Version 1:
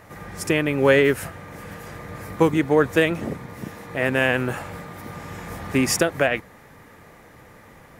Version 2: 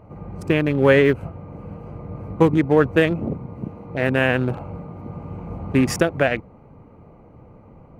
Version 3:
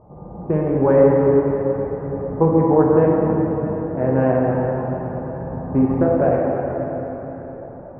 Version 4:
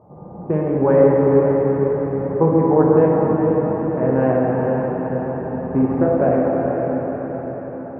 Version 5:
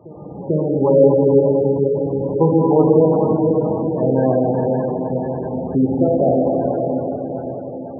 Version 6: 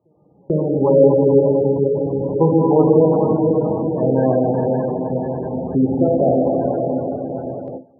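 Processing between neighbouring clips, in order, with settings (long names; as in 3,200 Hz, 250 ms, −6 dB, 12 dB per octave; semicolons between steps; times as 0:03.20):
adaptive Wiener filter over 25 samples; bass and treble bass +4 dB, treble −7 dB; level +1.5 dB
transistor ladder low-pass 1,100 Hz, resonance 35%; dense smooth reverb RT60 4.5 s, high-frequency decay 0.7×, DRR −4 dB; level +4 dB
high-pass filter 98 Hz 12 dB per octave; feedback delay with all-pass diffusion 481 ms, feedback 52%, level −6 dB
backwards echo 443 ms −19.5 dB; gate on every frequency bin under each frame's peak −20 dB strong; level +1 dB
noise gate with hold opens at −19 dBFS; one half of a high-frequency compander decoder only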